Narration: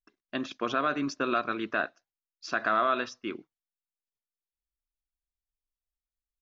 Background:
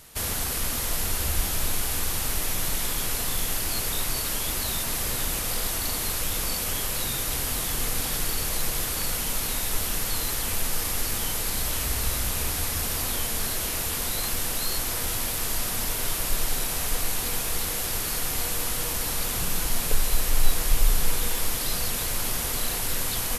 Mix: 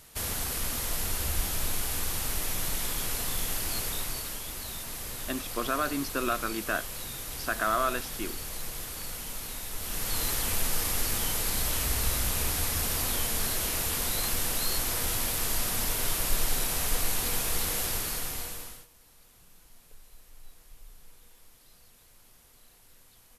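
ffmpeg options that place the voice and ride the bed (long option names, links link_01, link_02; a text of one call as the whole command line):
ffmpeg -i stem1.wav -i stem2.wav -filter_complex "[0:a]adelay=4950,volume=-1.5dB[link_01];[1:a]volume=4.5dB,afade=type=out:start_time=3.78:duration=0.65:silence=0.501187,afade=type=in:start_time=9.77:duration=0.47:silence=0.375837,afade=type=out:start_time=17.81:duration=1.06:silence=0.0354813[link_02];[link_01][link_02]amix=inputs=2:normalize=0" out.wav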